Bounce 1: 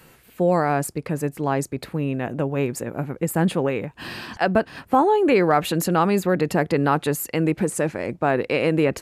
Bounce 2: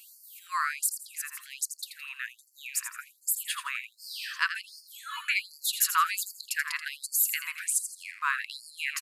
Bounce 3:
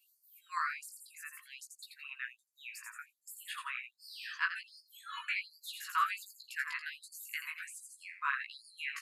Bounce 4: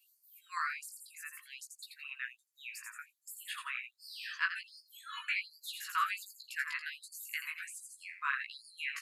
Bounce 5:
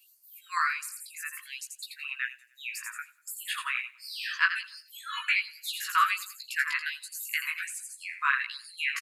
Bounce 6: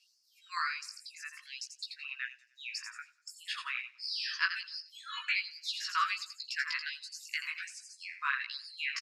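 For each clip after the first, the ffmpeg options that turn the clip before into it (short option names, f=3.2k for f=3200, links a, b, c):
-filter_complex "[0:a]highshelf=f=7.4k:g=7,asplit=5[a][b][c][d][e];[b]adelay=83,afreqshift=39,volume=-9.5dB[f];[c]adelay=166,afreqshift=78,volume=-18.9dB[g];[d]adelay=249,afreqshift=117,volume=-28.2dB[h];[e]adelay=332,afreqshift=156,volume=-37.6dB[i];[a][f][g][h][i]amix=inputs=5:normalize=0,afftfilt=real='re*gte(b*sr/1024,940*pow(4400/940,0.5+0.5*sin(2*PI*1.3*pts/sr)))':imag='im*gte(b*sr/1024,940*pow(4400/940,0.5+0.5*sin(2*PI*1.3*pts/sr)))':win_size=1024:overlap=0.75"
-filter_complex "[0:a]afftdn=nr=16:nf=-48,acrossover=split=3100[a][b];[b]acompressor=threshold=-42dB:ratio=4:attack=1:release=60[c];[a][c]amix=inputs=2:normalize=0,flanger=delay=15:depth=3.9:speed=0.48,volume=-2.5dB"
-af "highpass=1.2k,volume=1.5dB"
-af "aecho=1:1:97|194|291:0.0794|0.0373|0.0175,volume=8.5dB"
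-af "lowpass=f=5.3k:t=q:w=6.8,volume=-7.5dB"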